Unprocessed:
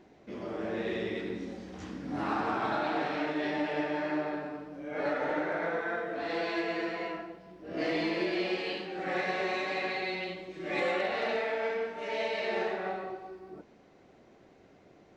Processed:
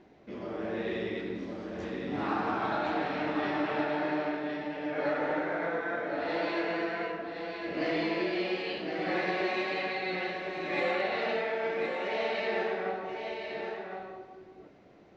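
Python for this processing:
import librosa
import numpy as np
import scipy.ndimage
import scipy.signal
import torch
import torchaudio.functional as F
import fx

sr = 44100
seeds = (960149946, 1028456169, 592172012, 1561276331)

p1 = scipy.signal.sosfilt(scipy.signal.butter(2, 5100.0, 'lowpass', fs=sr, output='sos'), x)
y = p1 + fx.echo_single(p1, sr, ms=1064, db=-5.5, dry=0)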